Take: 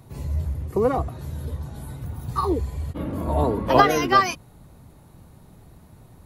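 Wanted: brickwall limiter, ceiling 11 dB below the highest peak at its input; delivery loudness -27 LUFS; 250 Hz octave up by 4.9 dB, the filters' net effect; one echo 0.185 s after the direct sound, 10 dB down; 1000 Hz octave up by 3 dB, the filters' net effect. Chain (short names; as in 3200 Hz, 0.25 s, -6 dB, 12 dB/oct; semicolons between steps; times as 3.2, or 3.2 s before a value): bell 250 Hz +6 dB; bell 1000 Hz +3.5 dB; limiter -12 dBFS; echo 0.185 s -10 dB; gain -3 dB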